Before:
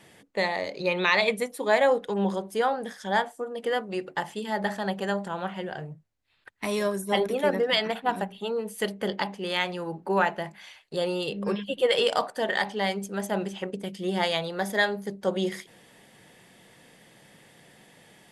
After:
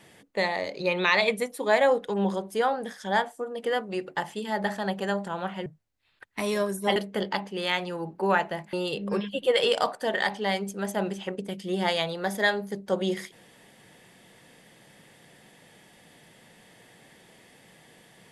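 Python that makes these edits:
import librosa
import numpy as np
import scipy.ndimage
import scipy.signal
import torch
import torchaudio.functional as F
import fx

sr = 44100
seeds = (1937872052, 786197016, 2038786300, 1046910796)

y = fx.edit(x, sr, fx.cut(start_s=5.66, length_s=0.25),
    fx.cut(start_s=7.21, length_s=1.62),
    fx.cut(start_s=10.6, length_s=0.48), tone=tone)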